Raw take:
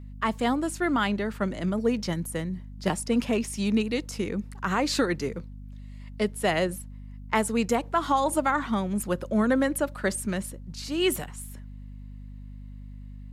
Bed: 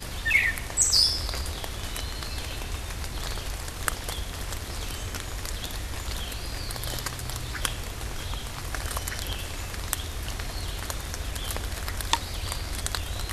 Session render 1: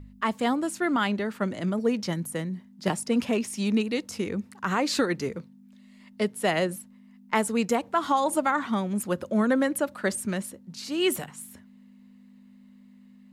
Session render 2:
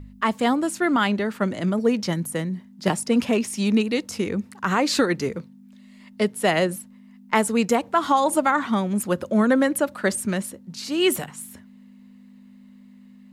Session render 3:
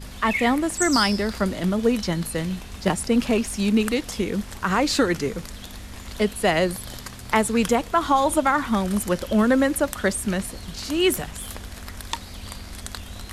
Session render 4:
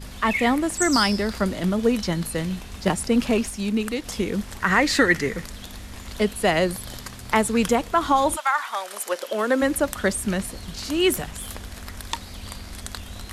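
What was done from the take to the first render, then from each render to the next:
hum removal 50 Hz, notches 3
level +4.5 dB
mix in bed −5 dB
0:03.50–0:04.05: clip gain −4 dB; 0:04.60–0:05.45: parametric band 1,900 Hz +14 dB 0.33 octaves; 0:08.35–0:09.61: high-pass filter 960 Hz → 270 Hz 24 dB per octave

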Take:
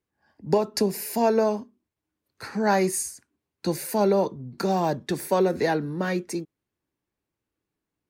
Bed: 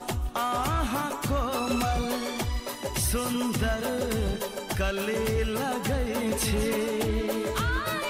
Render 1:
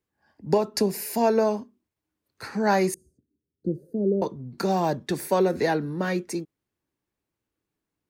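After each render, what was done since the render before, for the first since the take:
0:02.94–0:04.22: inverse Chebyshev low-pass filter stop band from 870 Hz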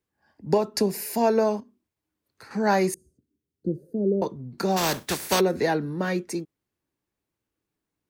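0:01.60–0:02.51: downward compressor, threshold −44 dBFS
0:04.76–0:05.39: compressing power law on the bin magnitudes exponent 0.43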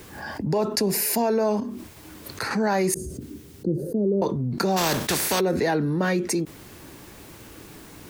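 brickwall limiter −15.5 dBFS, peak gain reduction 7 dB
envelope flattener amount 70%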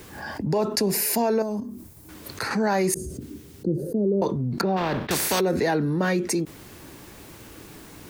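0:01.42–0:02.09: drawn EQ curve 150 Hz 0 dB, 400 Hz −7 dB, 2,900 Hz −15 dB, 12,000 Hz +1 dB
0:04.61–0:05.11: high-frequency loss of the air 380 metres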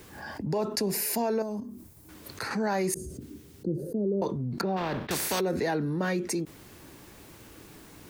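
level −5.5 dB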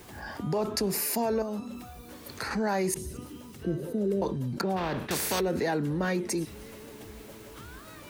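mix in bed −20 dB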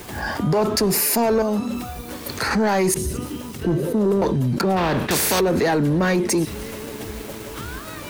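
leveller curve on the samples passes 2
in parallel at 0 dB: brickwall limiter −22.5 dBFS, peak gain reduction 7.5 dB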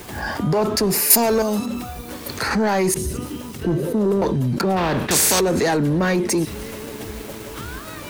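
0:01.10–0:01.66: high-shelf EQ 3,600 Hz +11.5 dB
0:05.11–0:05.77: parametric band 7,500 Hz +8.5 dB 1.1 octaves

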